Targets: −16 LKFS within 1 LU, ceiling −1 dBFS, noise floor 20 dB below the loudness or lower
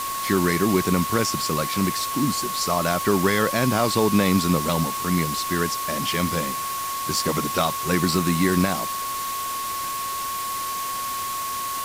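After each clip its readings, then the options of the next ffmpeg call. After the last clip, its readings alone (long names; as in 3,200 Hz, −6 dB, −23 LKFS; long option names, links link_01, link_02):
interfering tone 1,100 Hz; level of the tone −27 dBFS; background noise floor −29 dBFS; target noise floor −43 dBFS; integrated loudness −23.0 LKFS; sample peak −6.0 dBFS; target loudness −16.0 LKFS
→ -af "bandreject=frequency=1100:width=30"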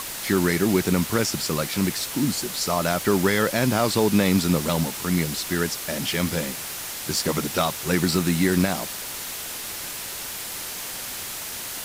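interfering tone none found; background noise floor −33 dBFS; target noise floor −44 dBFS
→ -af "afftdn=noise_reduction=11:noise_floor=-33"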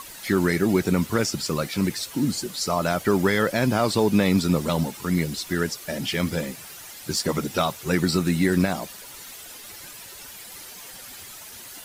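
background noise floor −42 dBFS; target noise floor −44 dBFS
→ -af "afftdn=noise_reduction=6:noise_floor=-42"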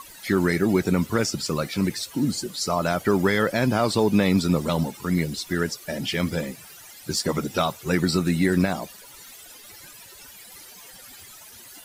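background noise floor −46 dBFS; integrated loudness −24.0 LKFS; sample peak −7.0 dBFS; target loudness −16.0 LKFS
→ -af "volume=8dB,alimiter=limit=-1dB:level=0:latency=1"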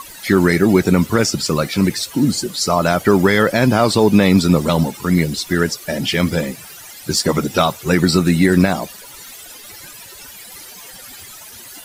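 integrated loudness −16.0 LKFS; sample peak −1.0 dBFS; background noise floor −38 dBFS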